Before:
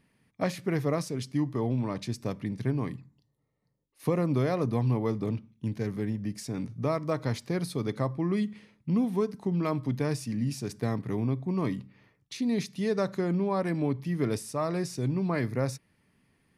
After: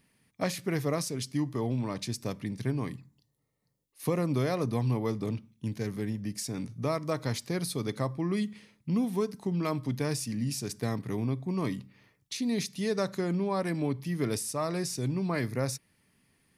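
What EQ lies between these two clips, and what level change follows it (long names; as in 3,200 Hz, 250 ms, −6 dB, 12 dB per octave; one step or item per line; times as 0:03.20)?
high-shelf EQ 3,500 Hz +10 dB
−2.0 dB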